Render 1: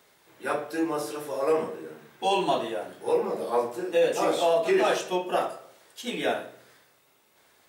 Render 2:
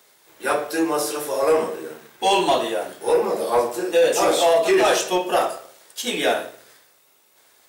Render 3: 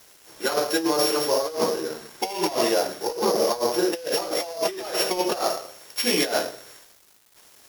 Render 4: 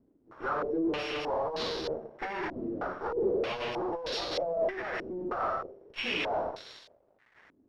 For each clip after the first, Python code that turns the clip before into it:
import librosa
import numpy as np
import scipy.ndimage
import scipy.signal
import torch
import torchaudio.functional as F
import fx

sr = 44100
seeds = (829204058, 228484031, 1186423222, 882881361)

y1 = fx.bass_treble(x, sr, bass_db=-7, treble_db=6)
y1 = fx.leveller(y1, sr, passes=1)
y1 = y1 * 10.0 ** (4.0 / 20.0)
y2 = np.r_[np.sort(y1[:len(y1) // 8 * 8].reshape(-1, 8), axis=1).ravel(), y1[len(y1) // 8 * 8:]]
y2 = fx.over_compress(y2, sr, threshold_db=-23.0, ratio=-0.5)
y2 = fx.quant_dither(y2, sr, seeds[0], bits=8, dither='none')
y3 = fx.tube_stage(y2, sr, drive_db=33.0, bias=0.8)
y3 = fx.filter_held_lowpass(y3, sr, hz=3.2, low_hz=280.0, high_hz=4000.0)